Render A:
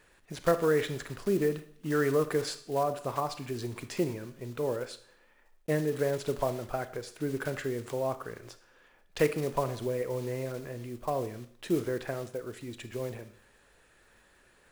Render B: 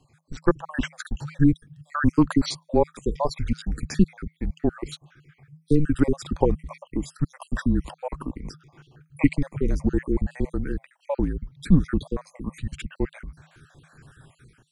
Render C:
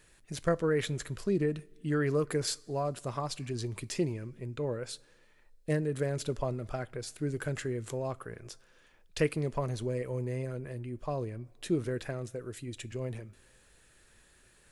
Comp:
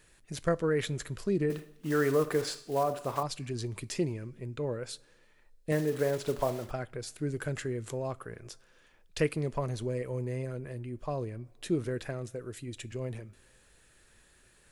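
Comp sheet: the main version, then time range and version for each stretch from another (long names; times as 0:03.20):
C
0:01.50–0:03.23: punch in from A
0:05.72–0:06.71: punch in from A
not used: B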